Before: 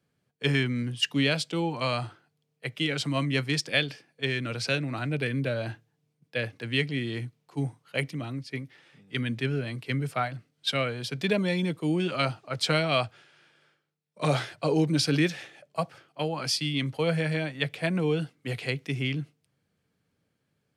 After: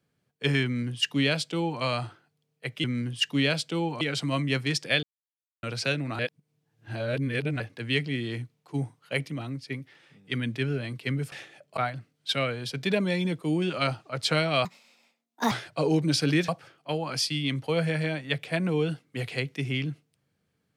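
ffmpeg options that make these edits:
ffmpeg -i in.wav -filter_complex "[0:a]asplit=12[link_01][link_02][link_03][link_04][link_05][link_06][link_07][link_08][link_09][link_10][link_11][link_12];[link_01]atrim=end=2.842[link_13];[link_02]atrim=start=0.648:end=1.822[link_14];[link_03]atrim=start=2.838:end=3.86,asetpts=PTS-STARTPTS,afade=type=out:start_time=1.018:duration=0.004:curve=hsin[link_15];[link_04]atrim=start=3.86:end=4.46,asetpts=PTS-STARTPTS,volume=0[link_16];[link_05]atrim=start=4.46:end=5.022,asetpts=PTS-STARTPTS,afade=type=in:duration=0.004:curve=hsin[link_17];[link_06]atrim=start=5.018:end=6.432,asetpts=PTS-STARTPTS,areverse[link_18];[link_07]atrim=start=6.428:end=10.152[link_19];[link_08]atrim=start=15.338:end=15.792[link_20];[link_09]atrim=start=10.148:end=13.034[link_21];[link_10]atrim=start=13.03:end=14.37,asetpts=PTS-STARTPTS,asetrate=68355,aresample=44100,atrim=end_sample=38125,asetpts=PTS-STARTPTS[link_22];[link_11]atrim=start=14.366:end=15.342[link_23];[link_12]atrim=start=15.788[link_24];[link_13][link_14]acrossfade=duration=0.004:curve1=hsin:curve2=hsin[link_25];[link_15][link_16][link_17]concat=n=3:v=0:a=1[link_26];[link_25][link_26]acrossfade=duration=0.004:curve1=hsin:curve2=hsin[link_27];[link_27][link_18]acrossfade=duration=0.004:curve1=hsin:curve2=hsin[link_28];[link_28][link_19]acrossfade=duration=0.004:curve1=hsin:curve2=hsin[link_29];[link_29][link_20]acrossfade=duration=0.004:curve1=hsin:curve2=hsin[link_30];[link_30][link_21]acrossfade=duration=0.004:curve1=hsin:curve2=hsin[link_31];[link_31][link_22]acrossfade=duration=0.004:curve1=hsin:curve2=hsin[link_32];[link_32][link_23]acrossfade=duration=0.004:curve1=hsin:curve2=hsin[link_33];[link_33][link_24]acrossfade=duration=0.004:curve1=hsin:curve2=hsin" out.wav

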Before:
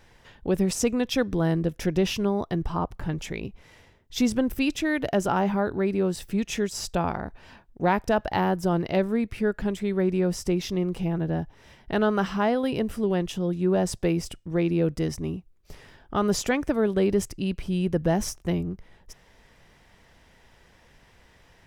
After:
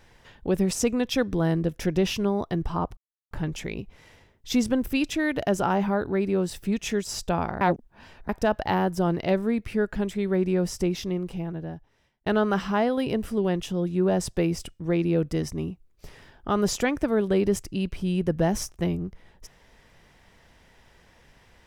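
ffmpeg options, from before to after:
ffmpeg -i in.wav -filter_complex "[0:a]asplit=5[link_01][link_02][link_03][link_04][link_05];[link_01]atrim=end=2.97,asetpts=PTS-STARTPTS,afade=type=out:start_time=2.966:duration=0.004:curve=hsin,apad=pad_dur=0.34[link_06];[link_02]atrim=start=2.97:end=7.272,asetpts=PTS-STARTPTS,afade=type=in:duration=0.004:curve=hsin[link_07];[link_03]atrim=start=7.268:end=7.952,asetpts=PTS-STARTPTS,areverse[link_08];[link_04]atrim=start=7.948:end=11.92,asetpts=PTS-STARTPTS,afade=type=out:start_time=2.522:duration=1.45[link_09];[link_05]atrim=start=11.92,asetpts=PTS-STARTPTS,afade=type=in:duration=0.004:curve=hsin[link_10];[link_06][link_07]concat=n=2:v=0:a=1[link_11];[link_11][link_08]acrossfade=duration=0.004:curve1=hsin:curve2=hsin[link_12];[link_09][link_10]concat=n=2:v=0:a=1[link_13];[link_12][link_13]acrossfade=duration=0.004:curve1=hsin:curve2=hsin" out.wav

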